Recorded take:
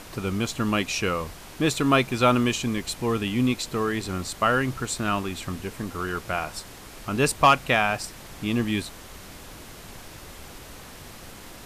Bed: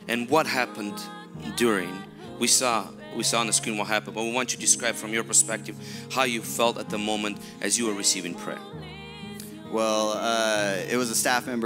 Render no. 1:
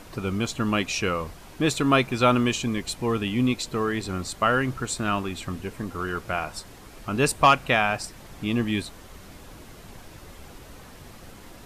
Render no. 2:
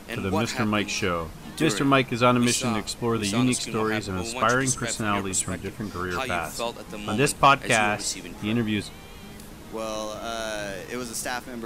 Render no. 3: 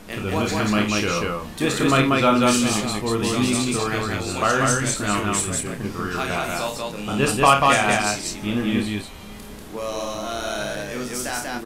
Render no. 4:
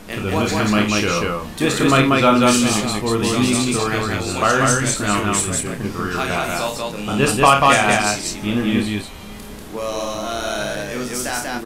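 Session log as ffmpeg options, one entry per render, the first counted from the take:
-af "afftdn=nr=6:nf=-44"
-filter_complex "[1:a]volume=-7dB[a];[0:a][a]amix=inputs=2:normalize=0"
-filter_complex "[0:a]asplit=2[a][b];[b]adelay=29,volume=-6.5dB[c];[a][c]amix=inputs=2:normalize=0,asplit=2[d][e];[e]aecho=0:1:52.48|189.5:0.398|0.794[f];[d][f]amix=inputs=2:normalize=0"
-af "volume=3.5dB,alimiter=limit=-1dB:level=0:latency=1"

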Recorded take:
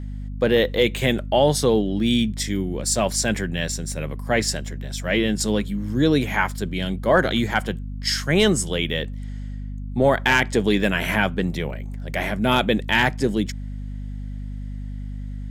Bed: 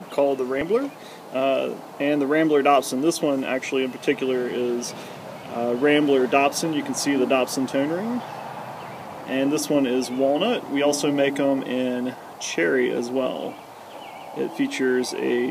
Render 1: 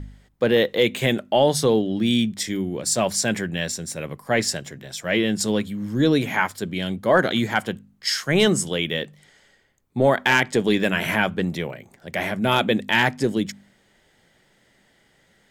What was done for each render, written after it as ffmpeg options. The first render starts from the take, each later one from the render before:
-af "bandreject=f=50:t=h:w=4,bandreject=f=100:t=h:w=4,bandreject=f=150:t=h:w=4,bandreject=f=200:t=h:w=4,bandreject=f=250:t=h:w=4"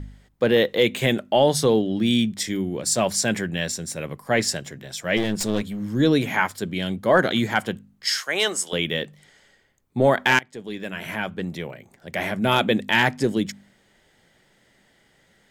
-filter_complex "[0:a]asplit=3[a][b][c];[a]afade=t=out:st=5.16:d=0.02[d];[b]aeval=exprs='clip(val(0),-1,0.0422)':c=same,afade=t=in:st=5.16:d=0.02,afade=t=out:st=5.79:d=0.02[e];[c]afade=t=in:st=5.79:d=0.02[f];[d][e][f]amix=inputs=3:normalize=0,asettb=1/sr,asplit=3[g][h][i];[g]atrim=end=8.204[j];[h]atrim=start=8.2:end=8.73,asetpts=PTS-STARTPTS,afade=t=in:d=0.004:c=qsin,afade=t=out:st=0.526:d=0.004:c=qsin,highpass=620[k];[i]atrim=start=8.726[l];[j][k]acrossfade=d=0.004:c1=hsin:c2=qsin[m];[m][l]acrossfade=d=0.004:c1=qsin:c2=hsin,asplit=2[n][o];[n]atrim=end=10.39,asetpts=PTS-STARTPTS,afade=t=out:st=10.386:d=0.004:c=hsin:silence=0.0707946[p];[o]atrim=start=10.39,asetpts=PTS-STARTPTS,afade=t=in:d=2.04:silence=0.0707946[q];[p][q]concat=n=2:v=0:a=1"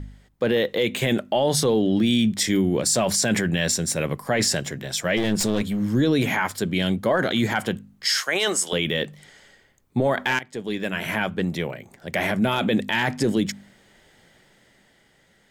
-af "dynaudnorm=f=140:g=17:m=11.5dB,alimiter=limit=-12dB:level=0:latency=1:release=21"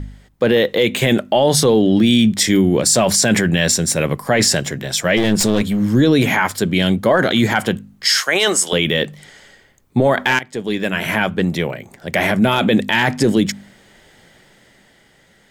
-af "volume=7dB"

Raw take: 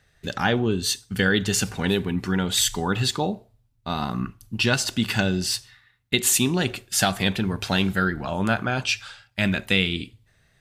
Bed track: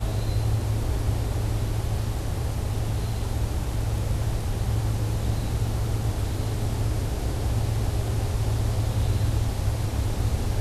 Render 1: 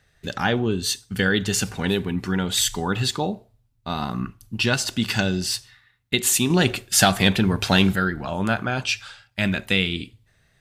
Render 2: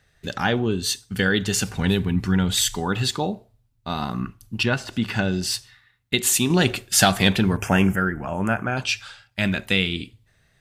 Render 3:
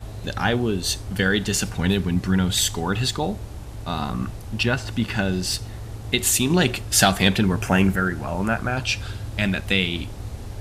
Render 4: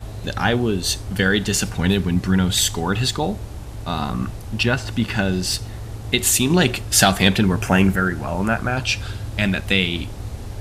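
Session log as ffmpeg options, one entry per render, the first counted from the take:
-filter_complex "[0:a]asettb=1/sr,asplit=3[a][b][c];[a]atrim=end=5.014[d];[b]atrim=start=5.01:end=5.41,asetpts=PTS-STARTPTS,afade=t=in:d=0.004:c=qsin,afade=t=out:st=0.396:d=0.004:c=qsin,equalizer=f=5.5k:w=1.5:g=5[e];[c]atrim=start=5.406[f];[d][e]acrossfade=d=0.004:c1=hsin:c2=qsin[g];[g][f]acrossfade=d=0.004:c1=qsin:c2=hsin,asettb=1/sr,asplit=3[h][i][j];[h]atrim=end=6.504[k];[i]atrim=start=6.5:end=7.96,asetpts=PTS-STARTPTS,afade=t=in:d=0.004:c=qsin,afade=t=out:st=1.456:d=0.004:c=qsin,acontrast=30[l];[j]atrim=start=7.956[m];[k][l]acrossfade=d=0.004:c1=hsin:c2=qsin[n];[n][m]acrossfade=d=0.004:c1=qsin:c2=hsin"
-filter_complex "[0:a]asplit=3[a][b][c];[a]afade=t=out:st=1.74:d=0.02[d];[b]asubboost=boost=3.5:cutoff=210,afade=t=in:st=1.74:d=0.02,afade=t=out:st=2.54:d=0.02[e];[c]afade=t=in:st=2.54:d=0.02[f];[d][e][f]amix=inputs=3:normalize=0,asettb=1/sr,asplit=3[g][h][i];[g]atrim=end=4.634[j];[h]atrim=start=4.63:end=5.43,asetpts=PTS-STARTPTS,afade=t=in:d=0.004:c=qsin,afade=t=out:st=0.796:d=0.004:c=qsin,acrossover=split=2700[k][l];[l]acompressor=threshold=-40dB:ratio=4:attack=1:release=60[m];[k][m]amix=inputs=2:normalize=0[n];[i]atrim=start=5.426[o];[j][n]acrossfade=d=0.004:c1=hsin:c2=qsin[p];[p][o]acrossfade=d=0.004:c1=qsin:c2=hsin,asettb=1/sr,asplit=3[q][r][s];[q]atrim=end=7.574[t];[r]atrim=start=7.57:end=8.77,asetpts=PTS-STARTPTS,afade=t=in:d=0.004:c=qsin,afade=t=out:st=1.196:d=0.004:c=qsin,asuperstop=centerf=4000:order=4:qfactor=1.2[u];[s]atrim=start=8.766[v];[t][u]acrossfade=d=0.004:c1=hsin:c2=qsin[w];[w][v]acrossfade=d=0.004:c1=qsin:c2=hsin"
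-filter_complex "[1:a]volume=-8.5dB[a];[0:a][a]amix=inputs=2:normalize=0"
-af "volume=2.5dB,alimiter=limit=-1dB:level=0:latency=1"

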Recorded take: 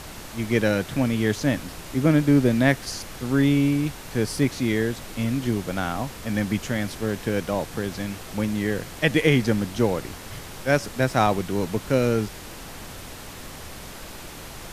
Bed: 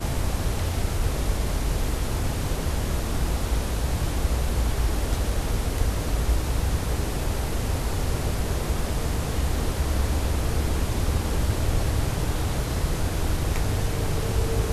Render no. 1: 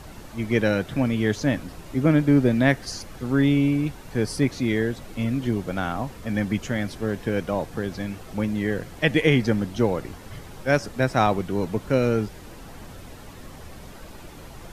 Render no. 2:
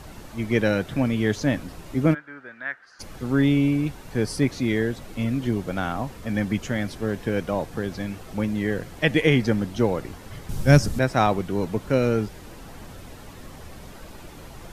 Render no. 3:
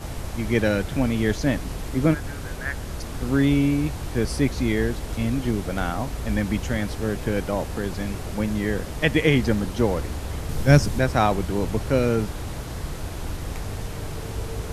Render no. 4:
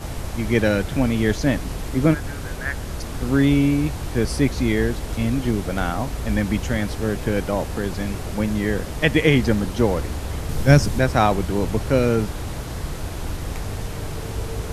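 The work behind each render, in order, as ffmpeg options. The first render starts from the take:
-af "afftdn=nr=9:nf=-39"
-filter_complex "[0:a]asplit=3[a][b][c];[a]afade=t=out:st=2.13:d=0.02[d];[b]bandpass=f=1.5k:t=q:w=4.9,afade=t=in:st=2.13:d=0.02,afade=t=out:st=2.99:d=0.02[e];[c]afade=t=in:st=2.99:d=0.02[f];[d][e][f]amix=inputs=3:normalize=0,asettb=1/sr,asplit=3[g][h][i];[g]atrim=end=10.494[j];[h]atrim=start=10.49:end=10.99,asetpts=PTS-STARTPTS,afade=t=in:d=0.004:c=qsin,afade=t=out:st=0.496:d=0.004:c=qsin,bass=f=250:g=15,treble=f=4k:g=9[k];[i]atrim=start=10.986[l];[j][k]acrossfade=d=0.004:c1=hsin:c2=qsin[m];[m][l]acrossfade=d=0.004:c1=qsin:c2=hsin"
-filter_complex "[1:a]volume=-6.5dB[a];[0:a][a]amix=inputs=2:normalize=0"
-af "volume=2.5dB,alimiter=limit=-2dB:level=0:latency=1"

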